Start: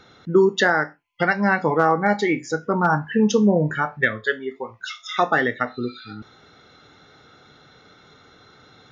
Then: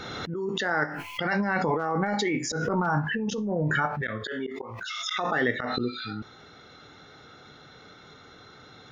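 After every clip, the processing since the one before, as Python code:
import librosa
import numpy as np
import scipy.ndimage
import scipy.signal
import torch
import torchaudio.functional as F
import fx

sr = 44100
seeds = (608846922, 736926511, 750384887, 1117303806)

y = fx.over_compress(x, sr, threshold_db=-23.0, ratio=-1.0)
y = fx.auto_swell(y, sr, attack_ms=110.0)
y = fx.pre_swell(y, sr, db_per_s=24.0)
y = y * librosa.db_to_amplitude(-3.5)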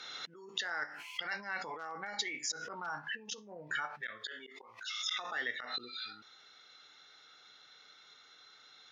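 y = fx.bandpass_q(x, sr, hz=4800.0, q=0.68)
y = y * librosa.db_to_amplitude(-3.0)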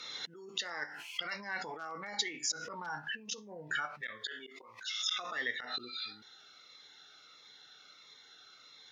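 y = fx.notch_cascade(x, sr, direction='falling', hz=1.5)
y = y * librosa.db_to_amplitude(3.0)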